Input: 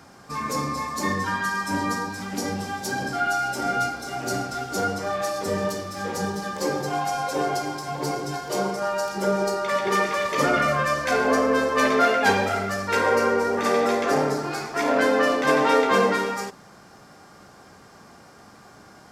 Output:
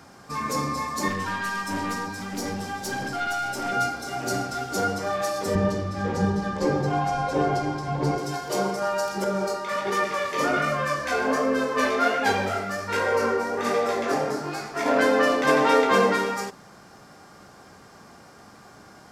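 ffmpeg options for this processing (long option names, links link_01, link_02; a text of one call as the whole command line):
ffmpeg -i in.wav -filter_complex "[0:a]asettb=1/sr,asplit=3[link_01][link_02][link_03];[link_01]atrim=end=1.084[link_04];[link_02]atrim=start=1.08:end=3.72,asetpts=PTS-STARTPTS,afade=type=in:duration=0.004:curve=qsin,afade=type=out:start_time=2.636:duration=0.004:curve=qsin,aeval=exprs='(tanh(14.1*val(0)+0.25)-tanh(0.25))/14.1':channel_layout=same[link_05];[link_03]atrim=start=3.716[link_06];[link_04][link_05]acrossfade=duration=0.004:curve1=hsin:curve2=qsin[link_07];[link_07][link_06]acrossfade=duration=0.004:curve1=qsin:curve2=hsin,asettb=1/sr,asplit=3[link_08][link_09][link_10];[link_08]atrim=end=5.554[link_11];[link_09]atrim=start=5.55:end=8.18,asetpts=PTS-STARTPTS,afade=type=in:duration=0.004:curve=qsin,afade=type=out:start_time=2.626:duration=0.004:curve=qsin,aemphasis=mode=reproduction:type=bsi[link_12];[link_10]atrim=start=8.176[link_13];[link_11][link_12]acrossfade=duration=0.004:curve1=hsin:curve2=qsin[link_14];[link_14][link_13]acrossfade=duration=0.004:curve1=qsin:curve2=hsin,asettb=1/sr,asplit=3[link_15][link_16][link_17];[link_15]atrim=end=9.244[link_18];[link_16]atrim=start=9.24:end=14.86,asetpts=PTS-STARTPTS,afade=type=in:duration=0.004:curve=qsin,afade=type=out:start_time=5.616:duration=0.004:curve=qsin,flanger=delay=18.5:depth=6:speed=1.3[link_19];[link_17]atrim=start=14.856[link_20];[link_18][link_19]acrossfade=duration=0.004:curve1=hsin:curve2=qsin[link_21];[link_21][link_20]acrossfade=duration=0.004:curve1=qsin:curve2=hsin" out.wav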